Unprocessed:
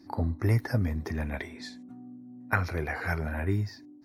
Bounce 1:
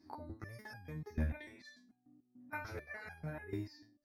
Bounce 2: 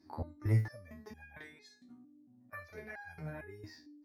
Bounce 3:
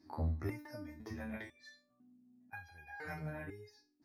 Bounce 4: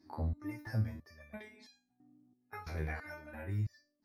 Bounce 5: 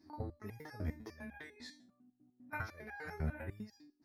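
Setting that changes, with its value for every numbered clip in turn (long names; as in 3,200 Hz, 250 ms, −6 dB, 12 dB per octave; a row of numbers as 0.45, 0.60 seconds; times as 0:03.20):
step-sequenced resonator, speed: 6.8, 4.4, 2, 3, 10 Hertz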